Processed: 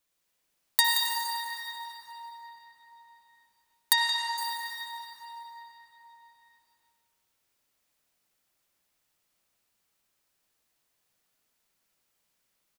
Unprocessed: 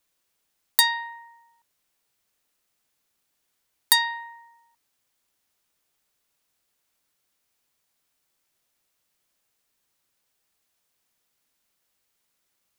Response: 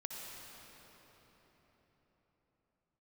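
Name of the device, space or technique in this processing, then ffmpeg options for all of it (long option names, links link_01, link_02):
cave: -filter_complex "[0:a]aecho=1:1:174:0.376[link_01];[1:a]atrim=start_sample=2205[link_02];[link_01][link_02]afir=irnorm=-1:irlink=0,asettb=1/sr,asplit=3[link_03][link_04][link_05];[link_03]atrim=end=3.934[link_06];[link_04]atrim=start=3.93:end=4.38,asetpts=PTS-STARTPTS,afade=type=in:duration=0.004:curve=qsin,afade=type=out:start_time=0.446:duration=0.004:curve=qsin,lowpass=5700[link_07];[link_05]atrim=start=4.376[link_08];[link_06][link_07]acrossfade=duration=0.004:curve1=hsin:curve2=qsin[link_09];[link_09][link_08]acrossfade=duration=0.004:curve1=qsin:curve2=hsin"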